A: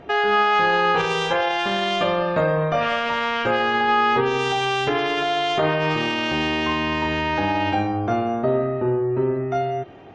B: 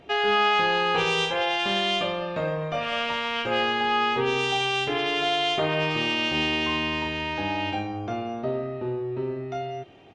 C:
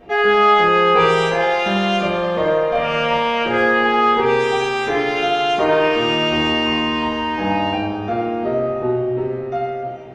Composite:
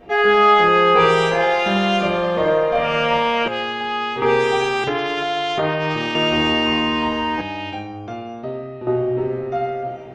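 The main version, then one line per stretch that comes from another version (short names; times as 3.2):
C
3.48–4.22 from B
4.84–6.15 from A
7.41–8.87 from B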